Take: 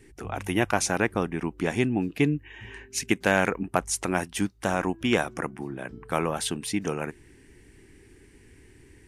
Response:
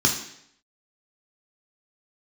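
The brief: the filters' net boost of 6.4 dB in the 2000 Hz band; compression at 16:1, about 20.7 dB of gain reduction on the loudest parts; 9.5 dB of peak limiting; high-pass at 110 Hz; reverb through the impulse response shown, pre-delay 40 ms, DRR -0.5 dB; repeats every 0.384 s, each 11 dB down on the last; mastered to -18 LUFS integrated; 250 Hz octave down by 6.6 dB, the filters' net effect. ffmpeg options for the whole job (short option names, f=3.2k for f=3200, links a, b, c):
-filter_complex "[0:a]highpass=110,equalizer=f=250:t=o:g=-9,equalizer=f=2k:t=o:g=8.5,acompressor=threshold=-35dB:ratio=16,alimiter=level_in=3dB:limit=-24dB:level=0:latency=1,volume=-3dB,aecho=1:1:384|768|1152:0.282|0.0789|0.0221,asplit=2[a][b];[1:a]atrim=start_sample=2205,adelay=40[c];[b][c]afir=irnorm=-1:irlink=0,volume=-14dB[d];[a][d]amix=inputs=2:normalize=0,volume=19.5dB"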